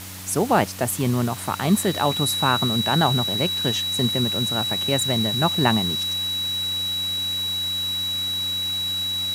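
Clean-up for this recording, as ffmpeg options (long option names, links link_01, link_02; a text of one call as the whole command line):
ffmpeg -i in.wav -af "adeclick=threshold=4,bandreject=frequency=94.2:width_type=h:width=4,bandreject=frequency=188.4:width_type=h:width=4,bandreject=frequency=282.6:width_type=h:width=4,bandreject=frequency=3900:width=30,afwtdn=0.014" out.wav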